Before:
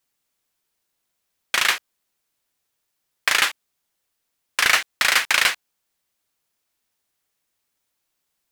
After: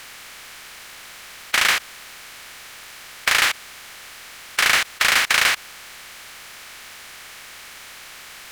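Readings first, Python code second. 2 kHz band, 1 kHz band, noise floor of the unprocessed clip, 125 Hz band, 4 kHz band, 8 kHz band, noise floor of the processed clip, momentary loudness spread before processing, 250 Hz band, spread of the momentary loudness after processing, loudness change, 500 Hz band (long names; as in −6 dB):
+1.5 dB, +1.5 dB, −77 dBFS, can't be measured, +1.5 dB, +2.0 dB, −41 dBFS, 10 LU, +3.0 dB, 21 LU, +1.0 dB, +2.0 dB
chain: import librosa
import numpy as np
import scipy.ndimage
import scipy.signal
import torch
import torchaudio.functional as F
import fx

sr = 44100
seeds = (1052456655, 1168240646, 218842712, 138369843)

p1 = fx.bin_compress(x, sr, power=0.4)
p2 = 10.0 ** (-13.0 / 20.0) * (np.abs((p1 / 10.0 ** (-13.0 / 20.0) + 3.0) % 4.0 - 2.0) - 1.0)
p3 = p1 + F.gain(torch.from_numpy(p2), -10.0).numpy()
p4 = fx.low_shelf(p3, sr, hz=100.0, db=6.0)
y = F.gain(torch.from_numpy(p4), -4.0).numpy()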